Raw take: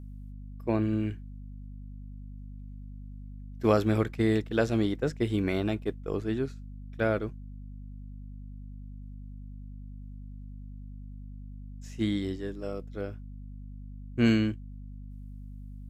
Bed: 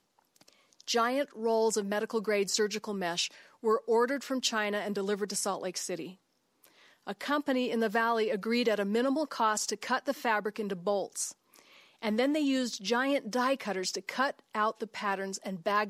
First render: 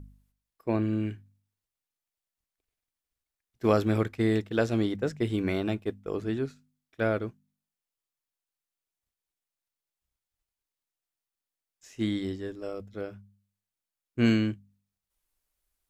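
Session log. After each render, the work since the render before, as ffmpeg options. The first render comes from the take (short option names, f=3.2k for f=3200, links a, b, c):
-af "bandreject=f=50:t=h:w=4,bandreject=f=100:t=h:w=4,bandreject=f=150:t=h:w=4,bandreject=f=200:t=h:w=4,bandreject=f=250:t=h:w=4"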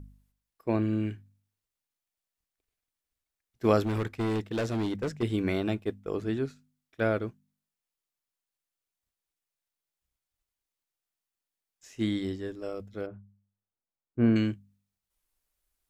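-filter_complex "[0:a]asettb=1/sr,asplit=3[a][b][c];[a]atrim=end=3.834[d];[b]atrim=start=3.83:end=5.23,asetpts=PTS-STARTPTS,afade=t=in:d=0.004:c=qsin,afade=t=out:st=1.396:d=0.004:c=qsin,asoftclip=type=hard:threshold=-26dB[e];[c]atrim=start=5.226[f];[d][e]acrossfade=d=0.004:c1=hsin:c2=qsin[g];[g][f]acrossfade=d=0.004:c1=qsin:c2=hsin,asettb=1/sr,asplit=3[h][i][j];[h]atrim=end=13.064[k];[i]atrim=start=13.06:end=14.36,asetpts=PTS-STARTPTS,afade=t=in:d=0.004:c=qsin,afade=t=out:st=1.296:d=0.004:c=qsin,lowpass=1.1k[l];[j]atrim=start=14.356[m];[k][l]acrossfade=d=0.004:c1=hsin:c2=qsin[n];[n][m]acrossfade=d=0.004:c1=qsin:c2=hsin"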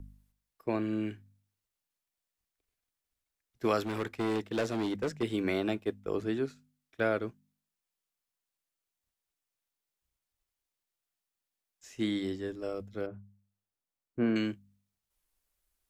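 -filter_complex "[0:a]acrossover=split=220|1000|1400[a][b][c][d];[a]acompressor=threshold=-43dB:ratio=6[e];[b]alimiter=limit=-21dB:level=0:latency=1:release=328[f];[e][f][c][d]amix=inputs=4:normalize=0"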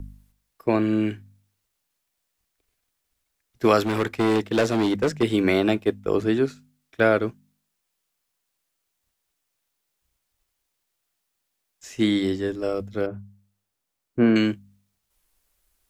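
-af "volume=10.5dB"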